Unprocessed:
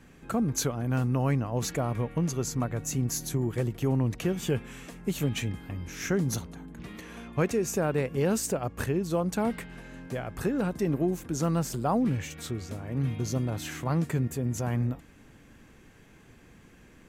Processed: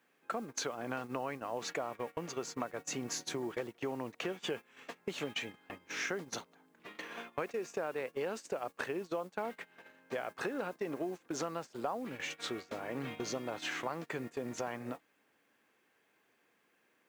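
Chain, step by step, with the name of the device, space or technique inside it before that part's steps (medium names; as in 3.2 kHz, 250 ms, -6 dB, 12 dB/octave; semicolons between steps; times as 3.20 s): baby monitor (band-pass 480–4200 Hz; compression 6:1, threshold -41 dBFS, peak gain reduction 16 dB; white noise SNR 25 dB; gate -47 dBFS, range -19 dB); trim +6.5 dB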